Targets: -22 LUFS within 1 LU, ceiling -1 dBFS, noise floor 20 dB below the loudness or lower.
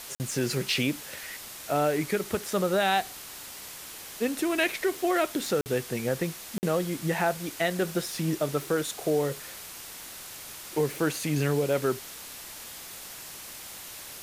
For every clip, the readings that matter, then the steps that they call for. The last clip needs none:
dropouts 3; longest dropout 49 ms; noise floor -43 dBFS; noise floor target -50 dBFS; loudness -29.5 LUFS; peak -11.5 dBFS; loudness target -22.0 LUFS
-> interpolate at 0.15/5.61/6.58, 49 ms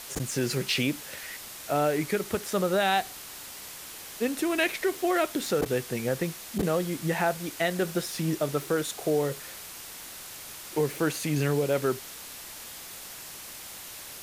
dropouts 0; noise floor -43 dBFS; noise floor target -49 dBFS
-> denoiser 6 dB, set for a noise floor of -43 dBFS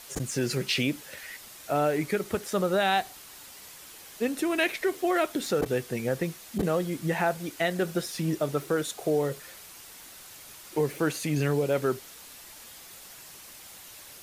noise floor -48 dBFS; noise floor target -49 dBFS
-> denoiser 6 dB, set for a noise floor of -48 dBFS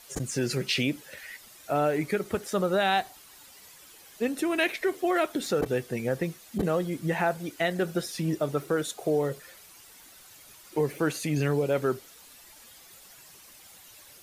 noise floor -52 dBFS; loudness -28.5 LUFS; peak -12.0 dBFS; loudness target -22.0 LUFS
-> gain +6.5 dB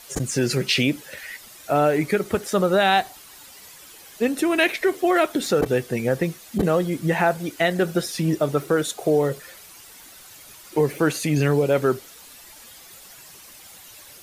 loudness -22.0 LUFS; peak -5.5 dBFS; noise floor -46 dBFS

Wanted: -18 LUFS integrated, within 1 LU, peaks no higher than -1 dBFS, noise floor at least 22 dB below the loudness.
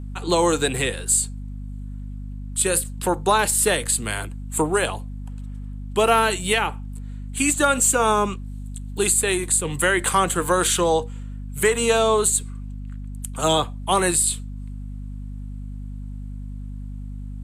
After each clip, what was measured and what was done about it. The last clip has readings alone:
hum 50 Hz; harmonics up to 250 Hz; hum level -30 dBFS; loudness -20.5 LUFS; peak -5.0 dBFS; loudness target -18.0 LUFS
-> de-hum 50 Hz, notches 5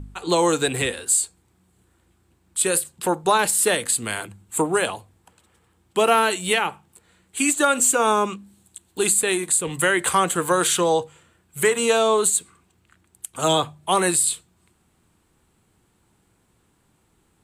hum none; loudness -20.5 LUFS; peak -4.5 dBFS; loudness target -18.0 LUFS
-> gain +2.5 dB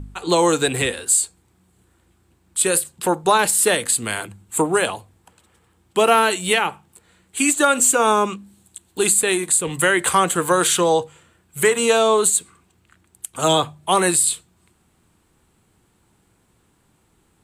loudness -18.0 LUFS; peak -2.0 dBFS; noise floor -62 dBFS

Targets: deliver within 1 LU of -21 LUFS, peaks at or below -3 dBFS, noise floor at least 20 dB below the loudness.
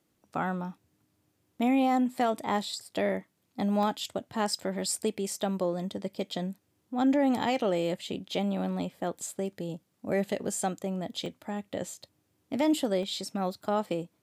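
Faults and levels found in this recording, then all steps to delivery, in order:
dropouts 3; longest dropout 1.6 ms; loudness -31.0 LUFS; peak -16.5 dBFS; loudness target -21.0 LUFS
-> interpolate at 3.83/11.26/13.03, 1.6 ms; gain +10 dB

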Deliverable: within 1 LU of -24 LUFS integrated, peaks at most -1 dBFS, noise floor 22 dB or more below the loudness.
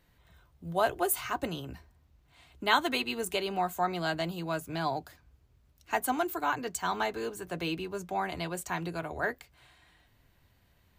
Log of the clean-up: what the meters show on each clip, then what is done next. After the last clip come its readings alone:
loudness -32.0 LUFS; peak -10.0 dBFS; loudness target -24.0 LUFS
-> gain +8 dB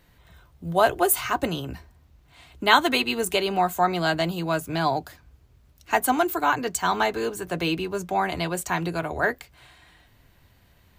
loudness -24.0 LUFS; peak -2.0 dBFS; noise floor -58 dBFS

